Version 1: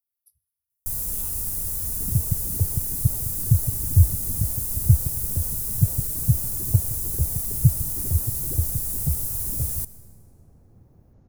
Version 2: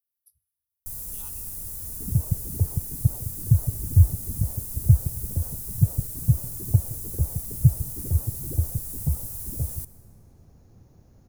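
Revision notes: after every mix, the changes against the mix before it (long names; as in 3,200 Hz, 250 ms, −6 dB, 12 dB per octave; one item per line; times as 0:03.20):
first sound −7.5 dB
second sound: remove low-pass filter 1,400 Hz 6 dB per octave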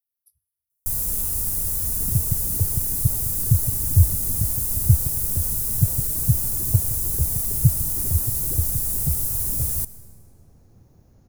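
first sound +11.0 dB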